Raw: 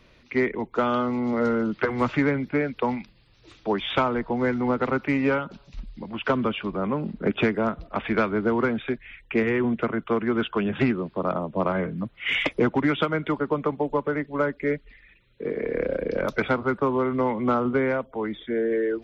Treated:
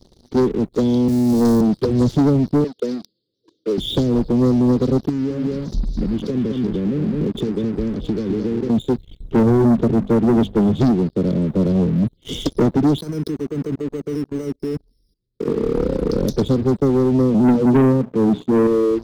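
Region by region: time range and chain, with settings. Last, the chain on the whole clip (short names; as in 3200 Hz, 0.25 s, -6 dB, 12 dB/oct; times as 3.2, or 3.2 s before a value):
1.08–1.61 zero-crossing step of -33.5 dBFS + three-band expander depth 100%
2.64–3.78 HPF 460 Hz + low-pass opened by the level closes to 1900 Hz, open at -26 dBFS
5.09–8.7 echo 0.209 s -7 dB + compressor 12:1, threshold -30 dBFS
9.2–10.64 tilt -1.5 dB/oct + notches 50/100/150/200/250 Hz
12.98–15.48 level quantiser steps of 19 dB + decimation joined by straight lines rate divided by 6×
17.34–18.67 HPF 130 Hz 24 dB/oct + tilt -3 dB/oct + notches 60/120/180/240/300/360/420 Hz
whole clip: inverse Chebyshev band-stop 730–2600 Hz, stop band 40 dB; dynamic EQ 370 Hz, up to -6 dB, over -37 dBFS, Q 0.7; sample leveller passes 3; gain +6 dB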